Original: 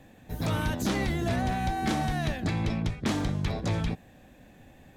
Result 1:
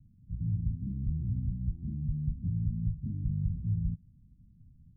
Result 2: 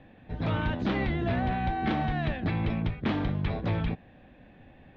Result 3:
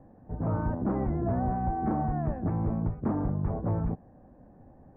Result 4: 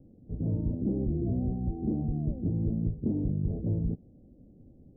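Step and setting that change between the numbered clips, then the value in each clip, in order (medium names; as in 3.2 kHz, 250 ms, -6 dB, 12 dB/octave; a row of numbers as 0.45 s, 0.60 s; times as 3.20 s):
inverse Chebyshev low-pass, stop band from: 570 Hz, 9.8 kHz, 3.8 kHz, 1.5 kHz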